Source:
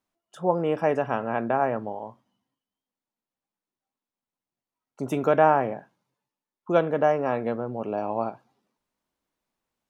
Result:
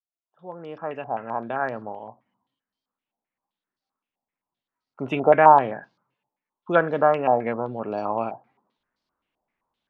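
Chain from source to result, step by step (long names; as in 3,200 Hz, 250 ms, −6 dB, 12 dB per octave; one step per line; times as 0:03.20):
fade in at the beginning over 2.91 s
low-pass on a step sequencer 7.7 Hz 770–4,600 Hz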